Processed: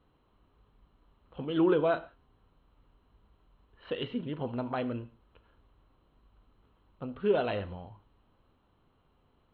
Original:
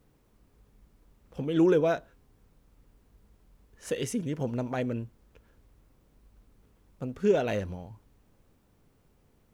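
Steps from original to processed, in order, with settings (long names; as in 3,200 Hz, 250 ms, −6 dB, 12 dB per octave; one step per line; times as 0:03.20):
Chebyshev low-pass with heavy ripple 4,200 Hz, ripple 9 dB
reverb whose tail is shaped and stops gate 170 ms falling, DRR 11 dB
level +4 dB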